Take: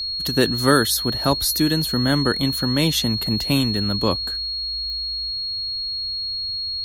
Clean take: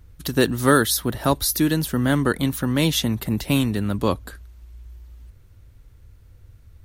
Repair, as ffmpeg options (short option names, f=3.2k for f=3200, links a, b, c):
-af "adeclick=t=4,bandreject=f=4.3k:w=30"